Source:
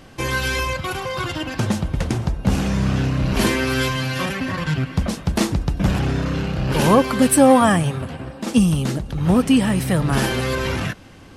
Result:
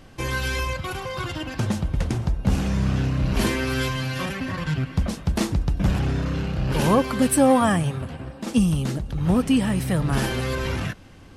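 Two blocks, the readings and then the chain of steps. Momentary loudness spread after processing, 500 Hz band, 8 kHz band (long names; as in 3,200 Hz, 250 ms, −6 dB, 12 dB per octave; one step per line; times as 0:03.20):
10 LU, −5.0 dB, −5.0 dB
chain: low-shelf EQ 91 Hz +7 dB
level −5 dB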